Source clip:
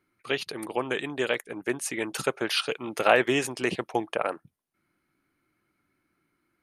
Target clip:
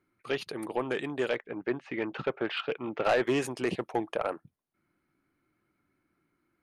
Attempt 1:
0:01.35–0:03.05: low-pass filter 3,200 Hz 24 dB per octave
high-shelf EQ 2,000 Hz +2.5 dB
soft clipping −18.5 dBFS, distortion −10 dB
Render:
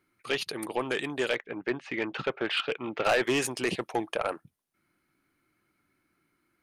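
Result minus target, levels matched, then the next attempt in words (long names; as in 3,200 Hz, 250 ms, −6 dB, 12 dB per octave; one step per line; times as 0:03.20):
4,000 Hz band +5.0 dB
0:01.35–0:03.05: low-pass filter 3,200 Hz 24 dB per octave
high-shelf EQ 2,000 Hz −7.5 dB
soft clipping −18.5 dBFS, distortion −12 dB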